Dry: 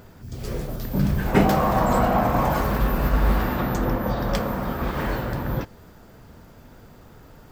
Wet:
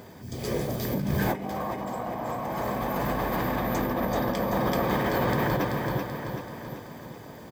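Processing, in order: HPF 89 Hz 6 dB/oct; notch comb 1400 Hz; on a send: feedback echo 0.383 s, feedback 53%, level -4.5 dB; on the sum: negative-ratio compressor -28 dBFS, ratio -1

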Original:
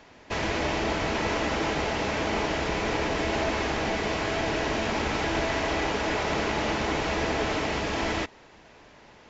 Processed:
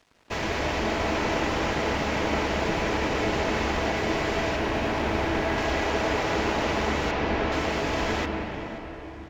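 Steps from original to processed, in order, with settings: 4.56–5.58 high shelf 5100 Hz -9 dB; crossover distortion -50 dBFS; 7.11–7.52 air absorption 150 m; feedback echo 0.535 s, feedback 45%, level -20 dB; on a send at -3 dB: reverb RT60 4.1 s, pre-delay 93 ms

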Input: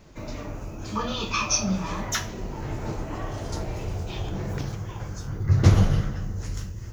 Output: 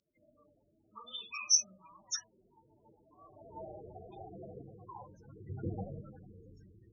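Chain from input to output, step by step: loudest bins only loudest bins 16; band-pass sweep 5100 Hz -> 870 Hz, 3.1–3.62; de-hum 306.9 Hz, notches 5; gain +2 dB

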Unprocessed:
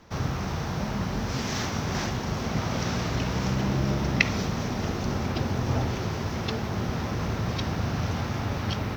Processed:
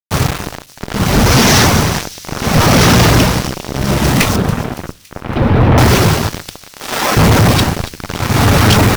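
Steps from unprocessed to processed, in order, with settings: 6.69–7.17 Bessel high-pass 570 Hz, order 2; reverb removal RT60 0.66 s; AGC gain up to 9 dB; added harmonics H 4 -8 dB, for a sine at -0.5 dBFS; requantised 6-bit, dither none; tremolo 0.69 Hz, depth 92%; fuzz box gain 28 dB, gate -34 dBFS; 4.36–5.78 air absorption 440 m; thin delay 0.281 s, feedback 57%, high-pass 3900 Hz, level -13.5 dB; on a send at -20.5 dB: reverb RT60 0.45 s, pre-delay 7 ms; on the sum: gain +7.5 dB

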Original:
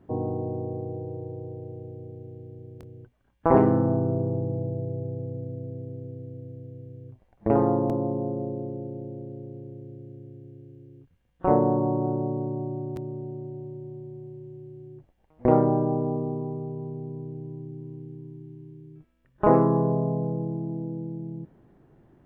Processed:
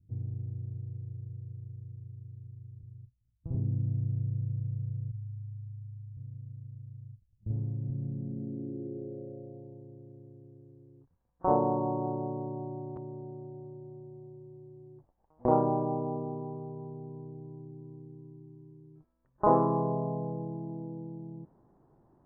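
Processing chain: 5.11–6.17 Chebyshev band-stop 120–880 Hz, order 5; low-pass sweep 110 Hz -> 1000 Hz, 7.77–9.88; gain -8 dB

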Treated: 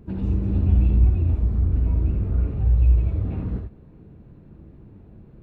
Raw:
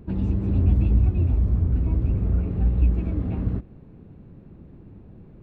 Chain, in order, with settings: 2.54–3.25 fifteen-band EQ 100 Hz +7 dB, 250 Hz -11 dB, 1600 Hz -4 dB; non-linear reverb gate 0.1 s rising, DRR 2.5 dB; gain -2.5 dB

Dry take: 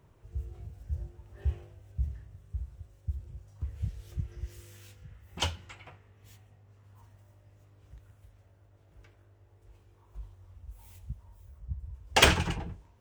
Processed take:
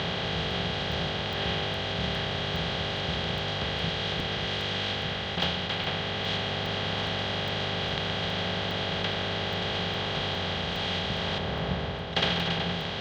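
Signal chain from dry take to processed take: per-bin compression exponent 0.2; 11.38–12.13 high shelf 2200 Hz -10 dB; vocal rider within 4 dB 0.5 s; speaker cabinet 120–4100 Hz, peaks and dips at 170 Hz +9 dB, 310 Hz -8 dB, 940 Hz -7 dB, 1400 Hz -3 dB, 2400 Hz -8 dB, 3900 Hz +9 dB; crackling interface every 0.41 s, samples 64, zero, from 0.51; gain -4 dB

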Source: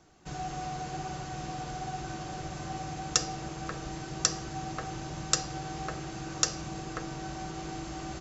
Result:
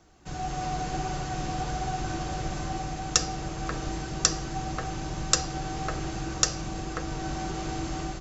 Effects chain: octaver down 2 oct, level 0 dB; AGC gain up to 4.5 dB; flange 1.7 Hz, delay 1.4 ms, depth 2.5 ms, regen +88%; gain +5.5 dB

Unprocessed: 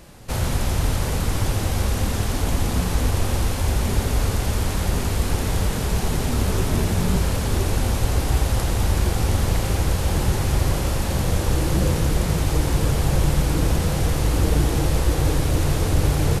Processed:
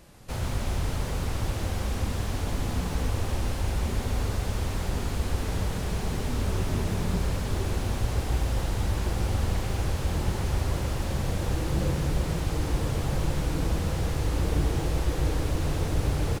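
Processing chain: self-modulated delay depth 0.064 ms; echo 0.142 s -6.5 dB; slew limiter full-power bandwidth 130 Hz; gain -7.5 dB

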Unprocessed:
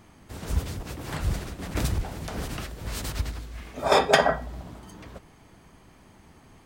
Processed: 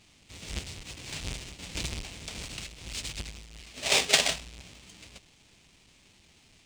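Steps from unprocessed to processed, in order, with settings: half-waves squared off; band shelf 4400 Hz +16 dB 2.4 oct; gain -16 dB

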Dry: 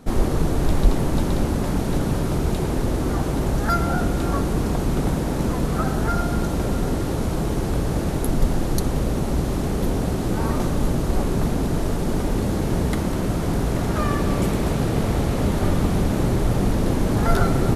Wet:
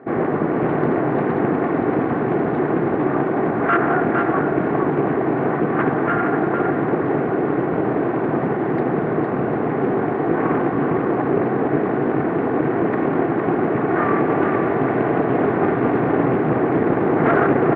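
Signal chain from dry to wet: minimum comb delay 2.7 ms; elliptic band-pass 150–1900 Hz, stop band 50 dB; on a send: echo 0.459 s -5 dB; on the sum: Doppler distortion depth 0.29 ms; gain +7 dB

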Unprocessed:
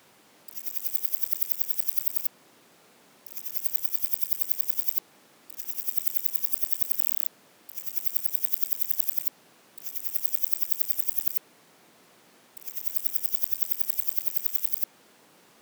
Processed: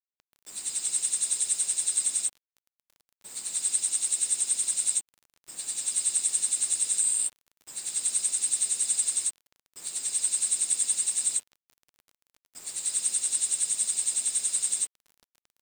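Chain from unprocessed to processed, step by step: nonlinear frequency compression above 1900 Hz 1.5:1; requantised 8-bit, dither none; dynamic EQ 3400 Hz, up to +6 dB, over -47 dBFS, Q 1.3

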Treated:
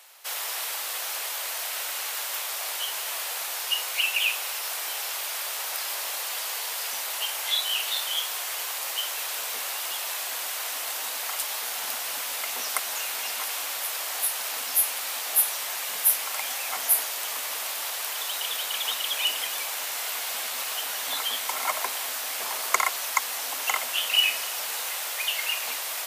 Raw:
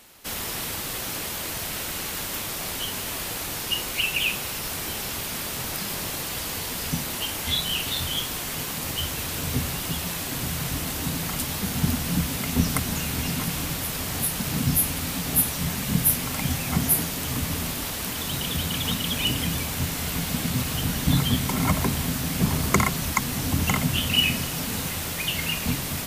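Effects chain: HPF 600 Hz 24 dB/oct

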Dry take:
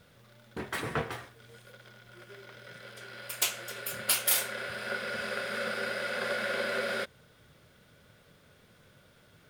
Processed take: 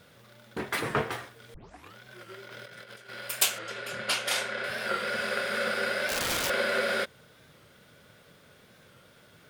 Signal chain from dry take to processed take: low shelf 86 Hz -11 dB; 1.54 tape start 0.42 s; 2.47–3.09 negative-ratio compressor -51 dBFS, ratio -0.5; 3.59–4.64 air absorption 87 m; 6.09–6.5 wrapped overs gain 28 dB; record warp 45 rpm, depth 100 cents; gain +4.5 dB

